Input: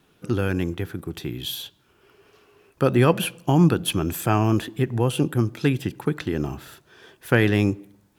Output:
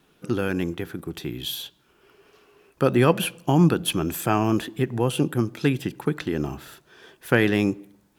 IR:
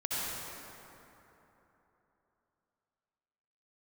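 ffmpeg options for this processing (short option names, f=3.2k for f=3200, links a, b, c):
-af "equalizer=f=97:t=o:w=0.52:g=-9"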